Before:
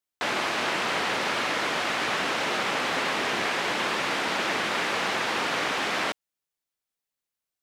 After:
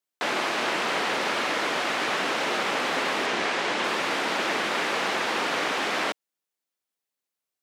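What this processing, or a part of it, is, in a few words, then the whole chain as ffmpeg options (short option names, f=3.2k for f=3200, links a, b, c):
filter by subtraction: -filter_complex "[0:a]asettb=1/sr,asplit=3[a][b][c];[a]atrim=end=3.264[d];[b]atrim=start=3.26:end=3.84,asetpts=PTS-STARTPTS,afade=t=in:d=0.004:c=qsin,afade=t=out:st=0.576:d=0.004:c=qsin,lowpass=9.1k[e];[c]atrim=start=3.836[f];[d][e]acrossfade=d=0.004:c1=hsin:c2=qsin[g];[g][f]acrossfade=d=0.004:c1=qsin:c2=hsin,asplit=2[h][i];[i]lowpass=320,volume=-1[j];[h][j]amix=inputs=2:normalize=0"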